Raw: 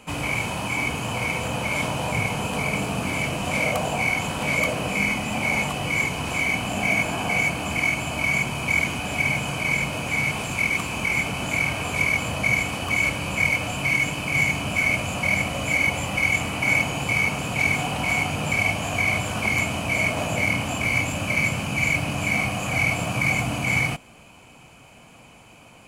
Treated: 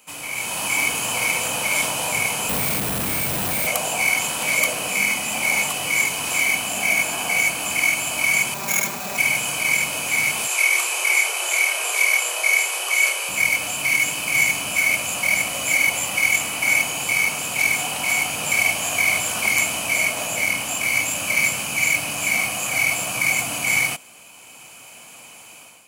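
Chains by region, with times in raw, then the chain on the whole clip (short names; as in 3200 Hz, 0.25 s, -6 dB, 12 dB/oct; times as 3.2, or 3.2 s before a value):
2.49–3.67 infinite clipping + RIAA curve playback + careless resampling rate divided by 4×, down none, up hold
8.54–9.18 median filter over 15 samples + comb 5.1 ms, depth 85%
10.47–13.29 brick-wall FIR band-pass 330–14000 Hz + doubler 31 ms -5 dB
whole clip: AGC; RIAA curve recording; gain -8.5 dB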